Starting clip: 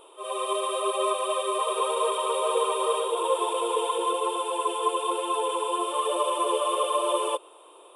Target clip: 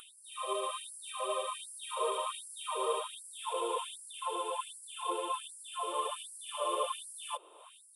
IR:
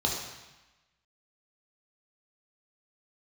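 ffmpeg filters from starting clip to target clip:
-af "acompressor=mode=upward:threshold=-31dB:ratio=2.5,afftfilt=real='re*gte(b*sr/1024,230*pow(4700/230,0.5+0.5*sin(2*PI*1.3*pts/sr)))':imag='im*gte(b*sr/1024,230*pow(4700/230,0.5+0.5*sin(2*PI*1.3*pts/sr)))':win_size=1024:overlap=0.75,volume=-7dB"

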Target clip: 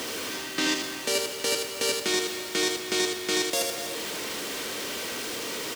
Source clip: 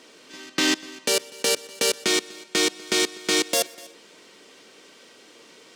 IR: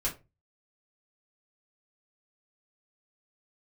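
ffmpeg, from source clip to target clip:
-af "aeval=exprs='val(0)+0.5*0.0501*sgn(val(0))':channel_layout=same,highpass=60,aecho=1:1:79:0.562,areverse,acompressor=mode=upward:threshold=-22dB:ratio=2.5,areverse,volume=-6.5dB"

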